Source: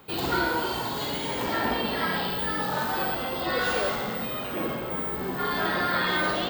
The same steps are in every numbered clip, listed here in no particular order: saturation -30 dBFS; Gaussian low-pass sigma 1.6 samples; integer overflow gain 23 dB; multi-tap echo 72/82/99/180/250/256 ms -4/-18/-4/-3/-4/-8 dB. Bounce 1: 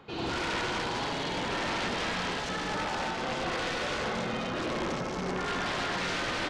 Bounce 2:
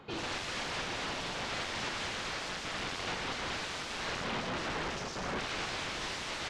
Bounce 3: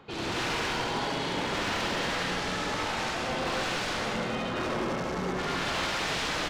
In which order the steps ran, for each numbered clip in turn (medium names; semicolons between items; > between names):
saturation > multi-tap echo > integer overflow > Gaussian low-pass; multi-tap echo > integer overflow > saturation > Gaussian low-pass; integer overflow > Gaussian low-pass > saturation > multi-tap echo